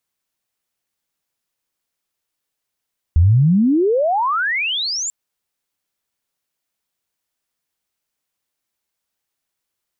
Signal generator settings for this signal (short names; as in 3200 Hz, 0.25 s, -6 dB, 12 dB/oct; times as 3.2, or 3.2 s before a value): chirp logarithmic 76 Hz -> 7500 Hz -8 dBFS -> -20.5 dBFS 1.94 s